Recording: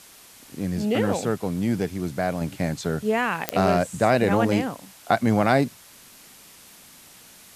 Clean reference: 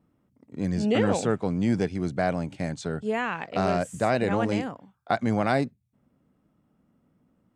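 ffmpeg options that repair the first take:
ffmpeg -i in.wav -af "adeclick=threshold=4,afwtdn=0.0045,asetnsamples=nb_out_samples=441:pad=0,asendcmd='2.41 volume volume -4.5dB',volume=0dB" out.wav

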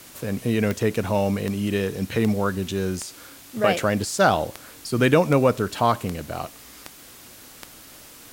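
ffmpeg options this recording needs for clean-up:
ffmpeg -i in.wav -af "adeclick=threshold=4,afwtdn=0.0056" out.wav

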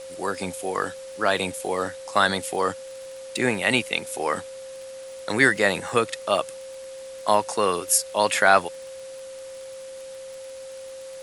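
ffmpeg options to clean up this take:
ffmpeg -i in.wav -af "adeclick=threshold=4,bandreject=frequency=530:width=30,afwtdn=0.005" out.wav

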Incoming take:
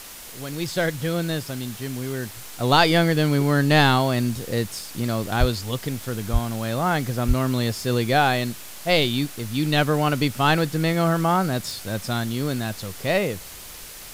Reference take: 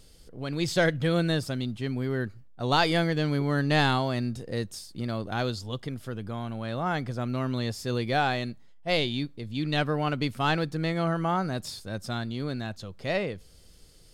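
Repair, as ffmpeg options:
ffmpeg -i in.wav -filter_complex "[0:a]adeclick=threshold=4,asplit=3[link_01][link_02][link_03];[link_01]afade=type=out:start_time=5.39:duration=0.02[link_04];[link_02]highpass=frequency=140:width=0.5412,highpass=frequency=140:width=1.3066,afade=type=in:start_time=5.39:duration=0.02,afade=type=out:start_time=5.51:duration=0.02[link_05];[link_03]afade=type=in:start_time=5.51:duration=0.02[link_06];[link_04][link_05][link_06]amix=inputs=3:normalize=0,asplit=3[link_07][link_08][link_09];[link_07]afade=type=out:start_time=6.32:duration=0.02[link_10];[link_08]highpass=frequency=140:width=0.5412,highpass=frequency=140:width=1.3066,afade=type=in:start_time=6.32:duration=0.02,afade=type=out:start_time=6.44:duration=0.02[link_11];[link_09]afade=type=in:start_time=6.44:duration=0.02[link_12];[link_10][link_11][link_12]amix=inputs=3:normalize=0,asplit=3[link_13][link_14][link_15];[link_13]afade=type=out:start_time=7.27:duration=0.02[link_16];[link_14]highpass=frequency=140:width=0.5412,highpass=frequency=140:width=1.3066,afade=type=in:start_time=7.27:duration=0.02,afade=type=out:start_time=7.39:duration=0.02[link_17];[link_15]afade=type=in:start_time=7.39:duration=0.02[link_18];[link_16][link_17][link_18]amix=inputs=3:normalize=0,afwtdn=0.011,asetnsamples=nb_out_samples=441:pad=0,asendcmd='2.37 volume volume -6.5dB',volume=0dB" out.wav

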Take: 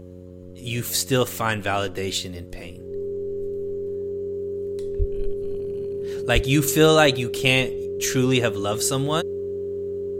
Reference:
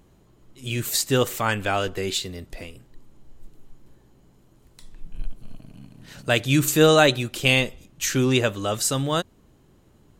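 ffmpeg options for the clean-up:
ffmpeg -i in.wav -filter_complex "[0:a]bandreject=frequency=90.4:width_type=h:width=4,bandreject=frequency=180.8:width_type=h:width=4,bandreject=frequency=271.2:width_type=h:width=4,bandreject=frequency=361.6:width_type=h:width=4,bandreject=frequency=452:width_type=h:width=4,bandreject=frequency=542.4:width_type=h:width=4,bandreject=frequency=400:width=30,asplit=3[link_01][link_02][link_03];[link_01]afade=type=out:start_time=4.98:duration=0.02[link_04];[link_02]highpass=frequency=140:width=0.5412,highpass=frequency=140:width=1.3066,afade=type=in:start_time=4.98:duration=0.02,afade=type=out:start_time=5.1:duration=0.02[link_05];[link_03]afade=type=in:start_time=5.1:duration=0.02[link_06];[link_04][link_05][link_06]amix=inputs=3:normalize=0,asplit=3[link_07][link_08][link_09];[link_07]afade=type=out:start_time=6.34:duration=0.02[link_10];[link_08]highpass=frequency=140:width=0.5412,highpass=frequency=140:width=1.3066,afade=type=in:start_time=6.34:duration=0.02,afade=type=out:start_time=6.46:duration=0.02[link_11];[link_09]afade=type=in:start_time=6.46:duration=0.02[link_12];[link_10][link_11][link_12]amix=inputs=3:normalize=0" out.wav

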